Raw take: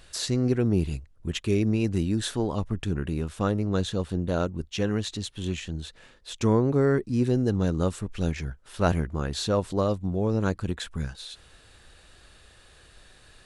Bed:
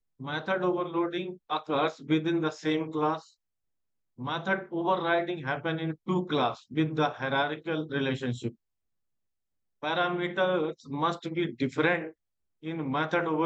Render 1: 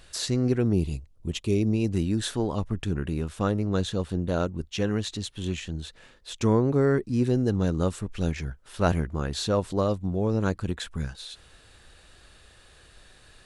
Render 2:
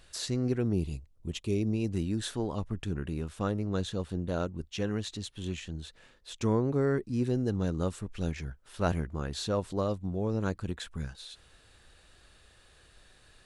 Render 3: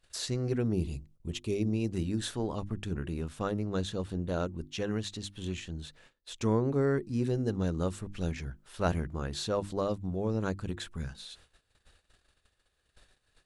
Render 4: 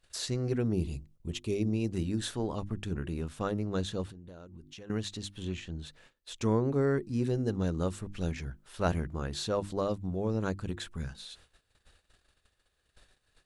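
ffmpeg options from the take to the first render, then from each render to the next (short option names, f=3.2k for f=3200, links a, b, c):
-filter_complex "[0:a]asettb=1/sr,asplit=3[a][b][c];[a]atrim=end=0.734[d];[b]atrim=start=0.73:end=1.93,asetpts=PTS-STARTPTS,afade=t=in:d=0.004:c=qsin,afade=t=out:st=1.196:d=0.004:c=qsin,equalizer=f=1.6k:w=1.9:g=-12[e];[c]atrim=start=1.926[f];[d][e]acrossfade=d=0.004:c1=hsin:c2=qsin[g];[g][f]acrossfade=d=0.004:c1=qsin:c2=hsin"
-af "volume=-5.5dB"
-af "bandreject=f=50:t=h:w=6,bandreject=f=100:t=h:w=6,bandreject=f=150:t=h:w=6,bandreject=f=200:t=h:w=6,bandreject=f=250:t=h:w=6,bandreject=f=300:t=h:w=6,bandreject=f=350:t=h:w=6,agate=range=-18dB:threshold=-56dB:ratio=16:detection=peak"
-filter_complex "[0:a]asettb=1/sr,asplit=3[a][b][c];[a]atrim=end=4.094[d];[b]atrim=start=4.09:end=4.9,asetpts=PTS-STARTPTS,afade=t=in:d=0.004:c=qsin,afade=t=out:st=0.806:d=0.004:c=qsin,acompressor=threshold=-44dB:ratio=12:attack=3.2:release=140:knee=1:detection=peak[e];[c]atrim=start=4.896[f];[d][e]acrossfade=d=0.004:c1=hsin:c2=qsin[g];[g][f]acrossfade=d=0.004:c1=qsin:c2=hsin,asettb=1/sr,asplit=3[h][i][j];[h]atrim=end=5.434[k];[i]atrim=start=5.43:end=5.86,asetpts=PTS-STARTPTS,afade=t=in:d=0.004:c=qsin,afade=t=out:st=0.426:d=0.004:c=qsin,highshelf=f=7.1k:g=-11[l];[j]atrim=start=5.856[m];[k][l]acrossfade=d=0.004:c1=hsin:c2=qsin[n];[n][m]acrossfade=d=0.004:c1=qsin:c2=hsin"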